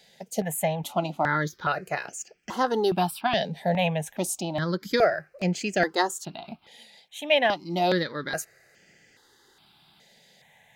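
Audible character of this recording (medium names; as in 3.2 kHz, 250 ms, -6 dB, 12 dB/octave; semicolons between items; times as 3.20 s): notches that jump at a steady rate 2.4 Hz 320–3800 Hz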